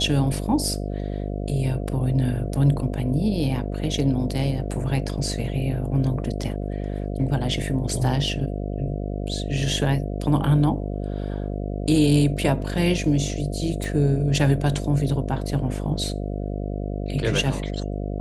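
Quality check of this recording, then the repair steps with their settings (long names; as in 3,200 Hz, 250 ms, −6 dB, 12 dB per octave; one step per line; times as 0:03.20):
mains buzz 50 Hz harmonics 14 −28 dBFS
0:13.84: click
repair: click removal
hum removal 50 Hz, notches 14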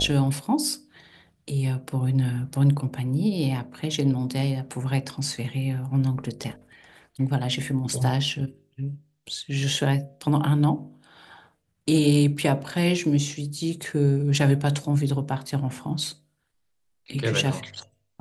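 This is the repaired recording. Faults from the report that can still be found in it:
none of them is left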